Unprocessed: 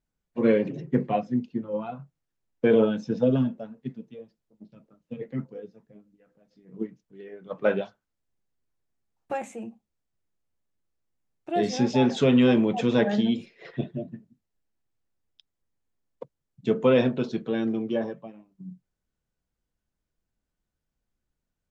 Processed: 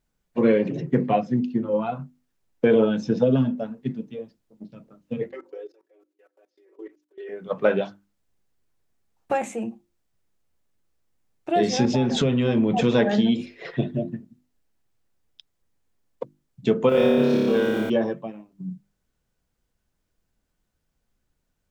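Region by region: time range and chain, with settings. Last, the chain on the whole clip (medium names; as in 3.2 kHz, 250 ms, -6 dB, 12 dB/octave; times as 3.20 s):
5.29–7.29 s: steep high-pass 300 Hz 96 dB/octave + comb 5.3 ms, depth 83% + level held to a coarse grid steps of 22 dB
11.85–12.84 s: bass shelf 200 Hz +10 dB + compression 3:1, threshold -24 dBFS
16.89–17.90 s: companding laws mixed up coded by A + compression 2.5:1, threshold -25 dBFS + flutter echo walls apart 4.9 m, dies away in 1.5 s
whole clip: hum notches 50/100/150/200/250/300/350 Hz; compression 2:1, threshold -27 dBFS; trim +8 dB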